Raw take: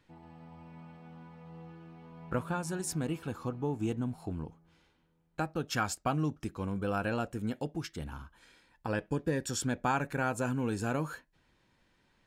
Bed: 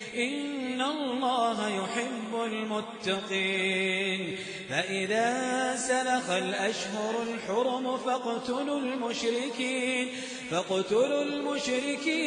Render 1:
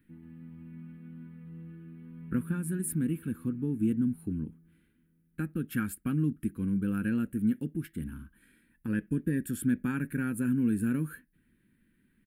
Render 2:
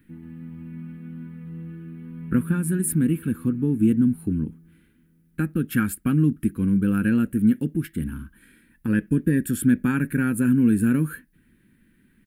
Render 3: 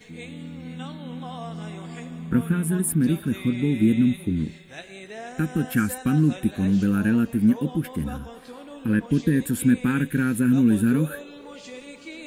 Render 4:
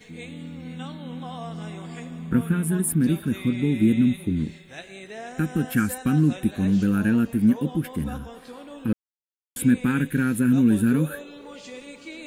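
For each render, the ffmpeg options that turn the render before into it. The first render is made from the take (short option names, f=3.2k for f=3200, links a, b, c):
-af "firequalizer=gain_entry='entry(120,0);entry(220,10);entry(690,-26);entry(1600,-1);entry(5800,-24);entry(9800,8)':delay=0.05:min_phase=1"
-af "volume=9dB"
-filter_complex "[1:a]volume=-11dB[a];[0:a][a]amix=inputs=2:normalize=0"
-filter_complex "[0:a]asplit=3[a][b][c];[a]atrim=end=8.93,asetpts=PTS-STARTPTS,afade=t=out:st=8.926:d=0.004:c=hsin[d];[b]atrim=start=8.93:end=9.56,asetpts=PTS-STARTPTS,volume=0[e];[c]atrim=start=9.56,asetpts=PTS-STARTPTS,afade=t=in:d=0.004:c=hsin[f];[d][e][f]concat=n=3:v=0:a=1"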